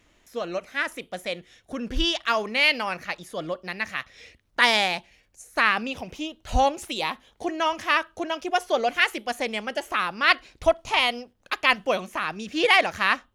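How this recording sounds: noise floor -65 dBFS; spectral tilt -3.0 dB/octave

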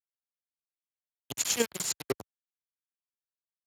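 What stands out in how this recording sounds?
chopped level 10 Hz, depth 60%, duty 20%; a quantiser's noise floor 6-bit, dither none; Speex

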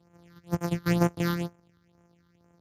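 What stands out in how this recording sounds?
a buzz of ramps at a fixed pitch in blocks of 256 samples; phasing stages 6, 2.1 Hz, lowest notch 640–4300 Hz; Speex

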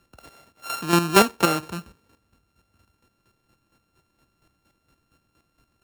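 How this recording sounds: a buzz of ramps at a fixed pitch in blocks of 32 samples; chopped level 4.3 Hz, depth 60%, duty 25%; AC-3

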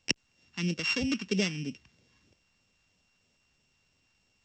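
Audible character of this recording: a buzz of ramps at a fixed pitch in blocks of 16 samples; phasing stages 2, 3.1 Hz, lowest notch 510–1100 Hz; A-law

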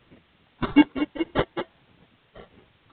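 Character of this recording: aliases and images of a low sample rate 2.5 kHz, jitter 0%; chopped level 1.6 Hz, depth 60%, duty 30%; a quantiser's noise floor 10-bit, dither triangular; µ-law

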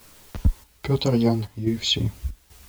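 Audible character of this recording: a quantiser's noise floor 8-bit, dither triangular; chopped level 1.2 Hz, depth 65%, duty 75%; a shimmering, thickened sound

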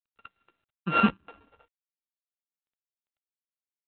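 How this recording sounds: a buzz of ramps at a fixed pitch in blocks of 32 samples; chopped level 0.78 Hz, depth 65%, duty 50%; G.726

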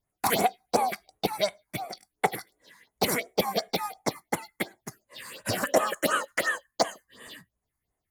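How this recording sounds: phasing stages 4, 2.8 Hz, lowest notch 490–5000 Hz

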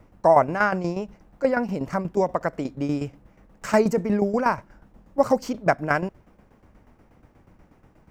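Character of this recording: tremolo saw down 8.3 Hz, depth 70%

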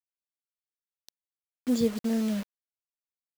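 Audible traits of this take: a quantiser's noise floor 6-bit, dither none

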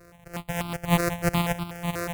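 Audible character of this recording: a buzz of ramps at a fixed pitch in blocks of 256 samples; tremolo triangle 3.3 Hz, depth 35%; notches that jump at a steady rate 8.2 Hz 870–1800 Hz

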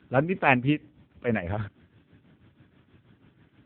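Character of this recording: a quantiser's noise floor 12-bit, dither none; tremolo triangle 6.2 Hz, depth 75%; AMR-NB

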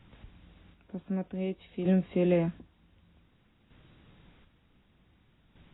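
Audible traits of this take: a quantiser's noise floor 10-bit, dither triangular; chopped level 0.54 Hz, depth 60%, duty 40%; AAC

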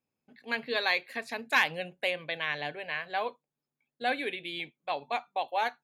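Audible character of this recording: noise floor -90 dBFS; spectral tilt +0.5 dB/octave

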